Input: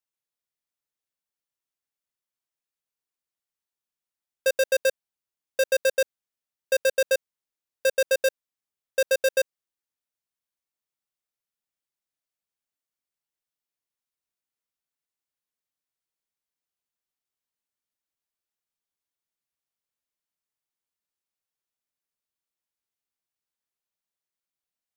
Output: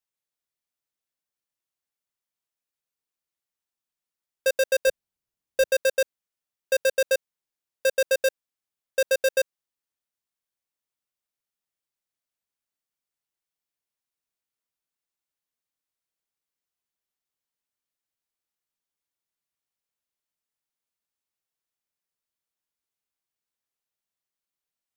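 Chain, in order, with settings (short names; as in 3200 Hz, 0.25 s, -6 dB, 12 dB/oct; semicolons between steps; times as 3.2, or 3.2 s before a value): 4.87–5.71 low shelf 270 Hz +11 dB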